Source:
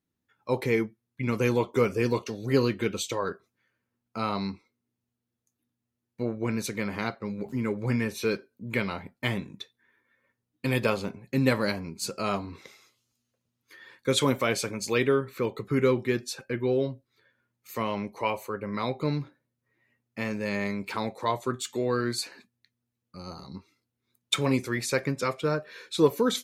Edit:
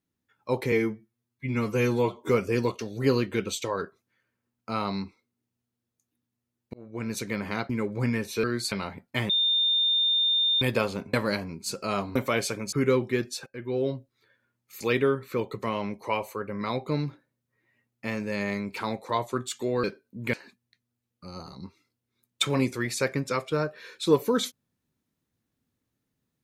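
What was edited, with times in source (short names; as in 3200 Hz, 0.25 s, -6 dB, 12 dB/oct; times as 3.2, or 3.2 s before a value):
0.72–1.77 stretch 1.5×
6.21–6.67 fade in
7.17–7.56 cut
8.3–8.8 swap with 21.97–22.25
9.38–10.7 bleep 3620 Hz -20.5 dBFS
11.22–11.49 cut
12.51–14.29 cut
14.86–15.68 move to 17.76
16.42–16.86 fade in, from -15 dB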